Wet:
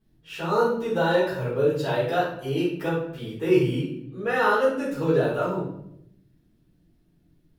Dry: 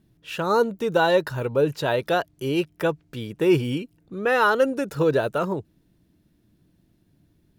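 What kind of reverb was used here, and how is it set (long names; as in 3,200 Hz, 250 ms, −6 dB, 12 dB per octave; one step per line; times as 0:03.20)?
rectangular room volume 150 cubic metres, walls mixed, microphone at 3.9 metres
level −15 dB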